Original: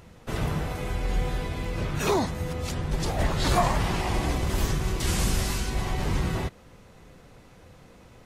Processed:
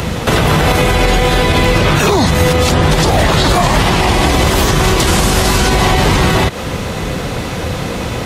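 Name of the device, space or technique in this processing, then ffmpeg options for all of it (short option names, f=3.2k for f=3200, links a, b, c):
mastering chain: -filter_complex "[0:a]highpass=41,equalizer=f=3.5k:t=o:w=0.77:g=3.5,acrossover=split=220|460|1500[a][b][c][d];[a]acompressor=threshold=-39dB:ratio=4[e];[b]acompressor=threshold=-45dB:ratio=4[f];[c]acompressor=threshold=-41dB:ratio=4[g];[d]acompressor=threshold=-43dB:ratio=4[h];[e][f][g][h]amix=inputs=4:normalize=0,acompressor=threshold=-37dB:ratio=6,alimiter=level_in=33dB:limit=-1dB:release=50:level=0:latency=1,volume=-1dB"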